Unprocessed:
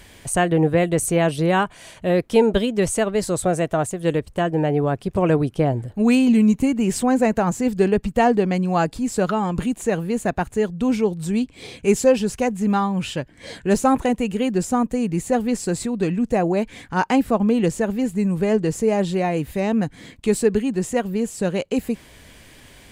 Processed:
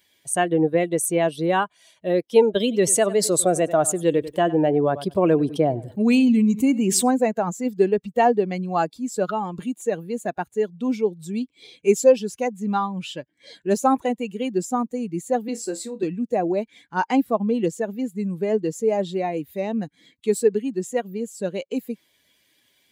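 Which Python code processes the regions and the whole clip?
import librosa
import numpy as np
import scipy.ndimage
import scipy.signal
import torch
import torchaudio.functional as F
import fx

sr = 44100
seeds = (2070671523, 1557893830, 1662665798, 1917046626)

y = fx.chain(x, sr, fx.echo_feedback(ms=96, feedback_pct=23, wet_db=-17.0),
    fx.env_flatten(amount_pct=50), at=(2.6, 7.11))
y = fx.chain(y, sr, fx.highpass(hz=210.0, slope=24),
    fx.room_flutter(wall_m=4.6, rt60_s=0.22), at=(15.48, 16.03))
y = fx.bin_expand(y, sr, power=1.5)
y = scipy.signal.sosfilt(scipy.signal.butter(2, 270.0, 'highpass', fs=sr, output='sos'), y)
y = fx.peak_eq(y, sr, hz=1800.0, db=-4.5, octaves=1.9)
y = F.gain(torch.from_numpy(y), 3.5).numpy()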